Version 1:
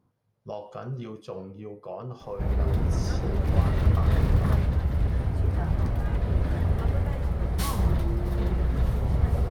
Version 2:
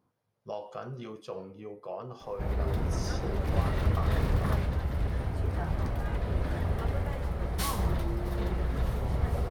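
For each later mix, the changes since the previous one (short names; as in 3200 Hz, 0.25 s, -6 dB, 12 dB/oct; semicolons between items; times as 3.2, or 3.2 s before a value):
background: add low shelf 71 Hz +7 dB; master: add low shelf 210 Hz -10.5 dB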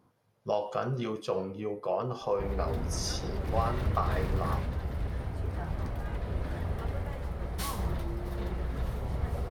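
speech +8.0 dB; background -3.5 dB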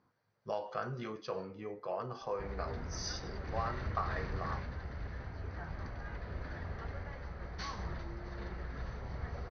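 master: add rippled Chebyshev low-pass 6200 Hz, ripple 9 dB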